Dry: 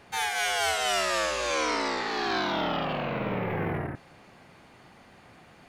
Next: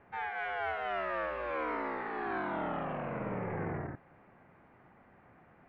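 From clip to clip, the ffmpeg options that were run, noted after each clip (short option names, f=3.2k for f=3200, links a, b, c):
-af "lowpass=f=2k:w=0.5412,lowpass=f=2k:w=1.3066,volume=-6.5dB"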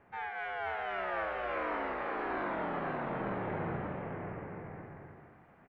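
-af "aecho=1:1:530|901|1161|1342|1470:0.631|0.398|0.251|0.158|0.1,volume=-2dB"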